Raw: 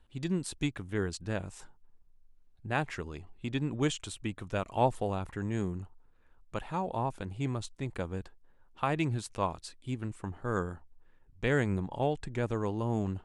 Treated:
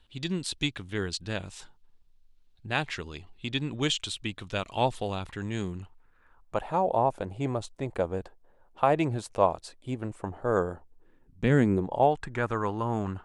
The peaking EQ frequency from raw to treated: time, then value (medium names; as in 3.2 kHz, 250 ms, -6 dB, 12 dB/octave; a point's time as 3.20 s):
peaking EQ +12 dB 1.4 oct
5.71 s 3.7 kHz
6.65 s 610 Hz
10.66 s 610 Hz
11.51 s 180 Hz
12.23 s 1.3 kHz